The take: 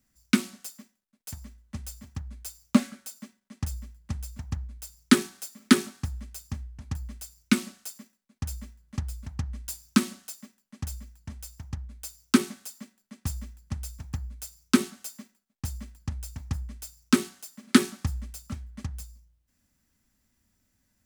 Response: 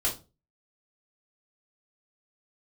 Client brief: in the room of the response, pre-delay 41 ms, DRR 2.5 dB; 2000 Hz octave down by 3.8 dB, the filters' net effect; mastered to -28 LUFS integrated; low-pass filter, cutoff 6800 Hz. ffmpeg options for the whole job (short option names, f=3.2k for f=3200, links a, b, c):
-filter_complex "[0:a]lowpass=6.8k,equalizer=f=2k:t=o:g=-5,asplit=2[a][b];[1:a]atrim=start_sample=2205,adelay=41[c];[b][c]afir=irnorm=-1:irlink=0,volume=-10dB[d];[a][d]amix=inputs=2:normalize=0,volume=0.5dB"